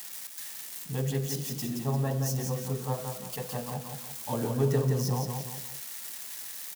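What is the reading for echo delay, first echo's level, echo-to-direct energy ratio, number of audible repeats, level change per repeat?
173 ms, −5.0 dB, −4.0 dB, 3, −7.5 dB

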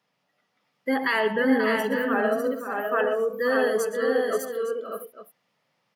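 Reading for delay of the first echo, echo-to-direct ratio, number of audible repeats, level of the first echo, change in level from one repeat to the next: 118 ms, −2.0 dB, 5, −13.0 dB, repeats not evenly spaced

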